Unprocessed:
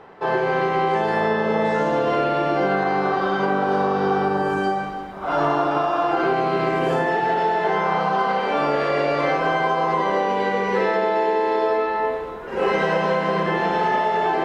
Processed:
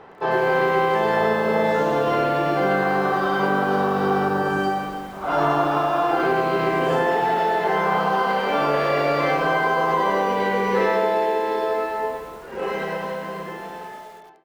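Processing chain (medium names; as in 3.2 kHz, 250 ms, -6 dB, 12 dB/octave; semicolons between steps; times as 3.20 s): fade out at the end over 3.65 s; bit-crushed delay 102 ms, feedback 55%, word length 7-bit, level -9.5 dB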